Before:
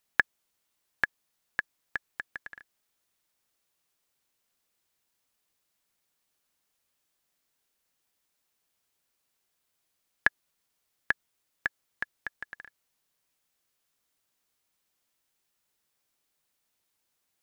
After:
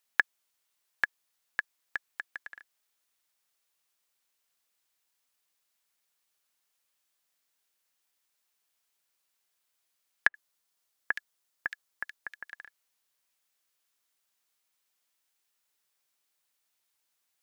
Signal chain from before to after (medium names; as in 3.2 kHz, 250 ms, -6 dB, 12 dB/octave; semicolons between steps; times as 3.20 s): bass shelf 470 Hz -11.5 dB; 10.27–12.51 s: bands offset in time lows, highs 70 ms, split 2.3 kHz